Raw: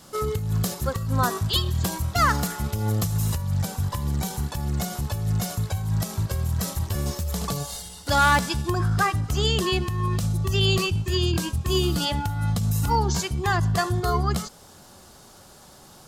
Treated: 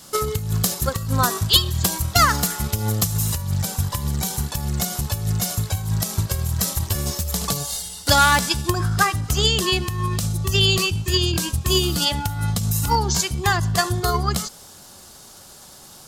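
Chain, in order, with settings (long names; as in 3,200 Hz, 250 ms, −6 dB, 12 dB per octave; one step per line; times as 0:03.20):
high-shelf EQ 2,600 Hz +8.5 dB
transient designer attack +7 dB, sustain +1 dB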